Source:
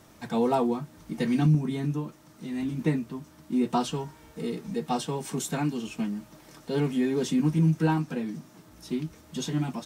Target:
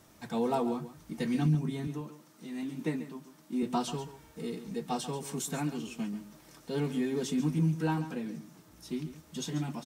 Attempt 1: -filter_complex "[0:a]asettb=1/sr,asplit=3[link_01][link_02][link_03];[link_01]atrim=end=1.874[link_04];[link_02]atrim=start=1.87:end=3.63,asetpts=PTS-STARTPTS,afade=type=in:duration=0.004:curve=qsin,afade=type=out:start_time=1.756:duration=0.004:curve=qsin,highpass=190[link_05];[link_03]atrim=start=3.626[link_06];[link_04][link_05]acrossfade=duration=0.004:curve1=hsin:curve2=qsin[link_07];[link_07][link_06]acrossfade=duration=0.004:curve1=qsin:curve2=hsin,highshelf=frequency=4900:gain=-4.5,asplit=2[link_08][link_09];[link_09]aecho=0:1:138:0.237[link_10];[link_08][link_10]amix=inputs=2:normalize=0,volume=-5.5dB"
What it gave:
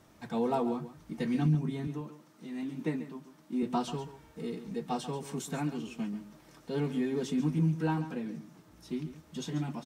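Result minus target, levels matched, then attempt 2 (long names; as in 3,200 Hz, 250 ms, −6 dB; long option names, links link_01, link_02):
8,000 Hz band −6.0 dB
-filter_complex "[0:a]asettb=1/sr,asplit=3[link_01][link_02][link_03];[link_01]atrim=end=1.874[link_04];[link_02]atrim=start=1.87:end=3.63,asetpts=PTS-STARTPTS,afade=type=in:duration=0.004:curve=qsin,afade=type=out:start_time=1.756:duration=0.004:curve=qsin,highpass=190[link_05];[link_03]atrim=start=3.626[link_06];[link_04][link_05]acrossfade=duration=0.004:curve1=hsin:curve2=qsin[link_07];[link_07][link_06]acrossfade=duration=0.004:curve1=qsin:curve2=hsin,highshelf=frequency=4900:gain=4,asplit=2[link_08][link_09];[link_09]aecho=0:1:138:0.237[link_10];[link_08][link_10]amix=inputs=2:normalize=0,volume=-5.5dB"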